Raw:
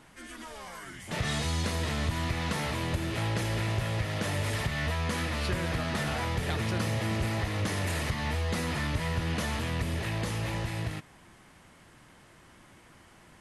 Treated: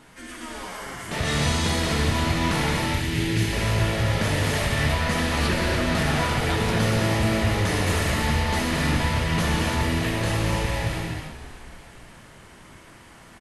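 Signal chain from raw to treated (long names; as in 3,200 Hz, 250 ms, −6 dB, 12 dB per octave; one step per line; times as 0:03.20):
0:02.71–0:03.53: flat-topped bell 820 Hz −12 dB
echo with shifted repeats 290 ms, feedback 60%, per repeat −43 Hz, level −15 dB
convolution reverb, pre-delay 3 ms, DRR −2 dB
level +4 dB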